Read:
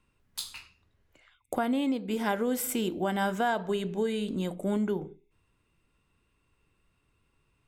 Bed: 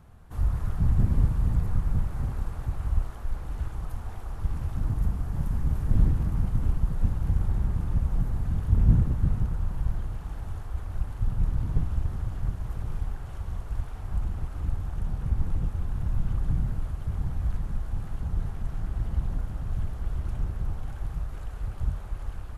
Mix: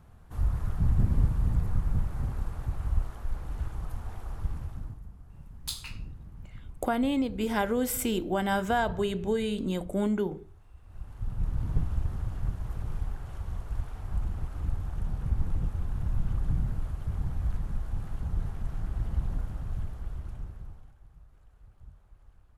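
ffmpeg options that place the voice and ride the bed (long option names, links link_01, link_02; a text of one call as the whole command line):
ffmpeg -i stem1.wav -i stem2.wav -filter_complex "[0:a]adelay=5300,volume=1dB[link_01];[1:a]volume=15.5dB,afade=type=out:start_time=4.34:duration=0.67:silence=0.133352,afade=type=in:start_time=10.82:duration=0.89:silence=0.133352,afade=type=out:start_time=19.41:duration=1.55:silence=0.1[link_02];[link_01][link_02]amix=inputs=2:normalize=0" out.wav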